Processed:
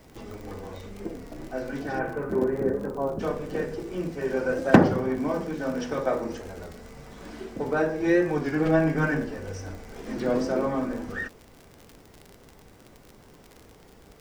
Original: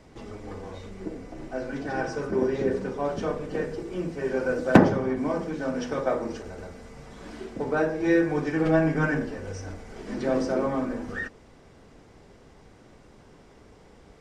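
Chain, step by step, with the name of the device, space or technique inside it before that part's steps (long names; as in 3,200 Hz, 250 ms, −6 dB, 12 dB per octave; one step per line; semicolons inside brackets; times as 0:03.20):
0:01.98–0:03.19: low-pass filter 2,600 Hz → 1,200 Hz 24 dB per octave
warped LP (wow of a warped record 33 1/3 rpm, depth 100 cents; surface crackle 56 per second −35 dBFS; white noise bed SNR 40 dB)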